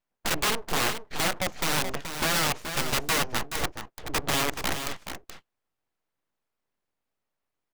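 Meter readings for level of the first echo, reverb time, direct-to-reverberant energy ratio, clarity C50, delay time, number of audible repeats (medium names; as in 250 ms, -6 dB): -8.5 dB, no reverb, no reverb, no reverb, 427 ms, 1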